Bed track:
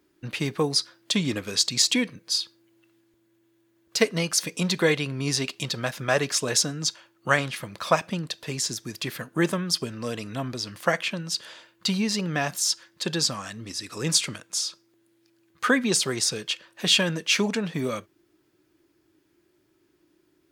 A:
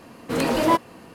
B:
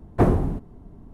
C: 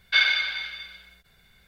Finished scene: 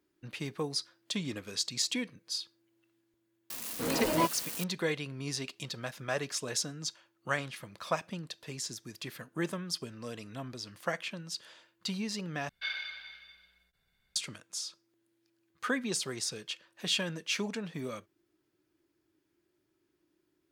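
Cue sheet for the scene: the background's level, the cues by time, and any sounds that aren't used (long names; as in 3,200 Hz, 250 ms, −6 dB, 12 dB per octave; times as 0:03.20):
bed track −10.5 dB
0:03.50: mix in A −9.5 dB + spike at every zero crossing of −18.5 dBFS
0:12.49: overwrite with C −16.5 dB
not used: B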